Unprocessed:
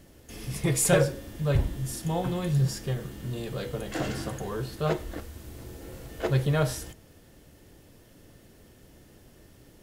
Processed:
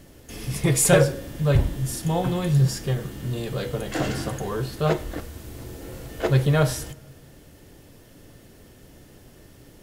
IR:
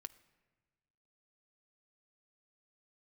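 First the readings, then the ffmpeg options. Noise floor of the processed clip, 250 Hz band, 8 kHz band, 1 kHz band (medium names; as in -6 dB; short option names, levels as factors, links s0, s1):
-50 dBFS, +5.0 dB, +5.0 dB, +5.0 dB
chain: -filter_complex "[0:a]asplit=2[s0][s1];[1:a]atrim=start_sample=2205,asetrate=34398,aresample=44100[s2];[s1][s2]afir=irnorm=-1:irlink=0,volume=1.26[s3];[s0][s3]amix=inputs=2:normalize=0"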